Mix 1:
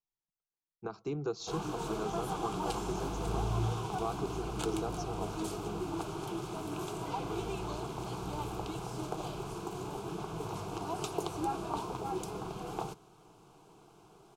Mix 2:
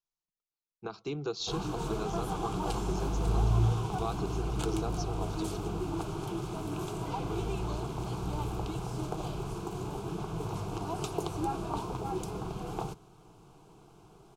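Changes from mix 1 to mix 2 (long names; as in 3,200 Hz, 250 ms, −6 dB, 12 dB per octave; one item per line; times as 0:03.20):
speech: add parametric band 3,500 Hz +11 dB 1.3 octaves
background: add low-shelf EQ 160 Hz +10 dB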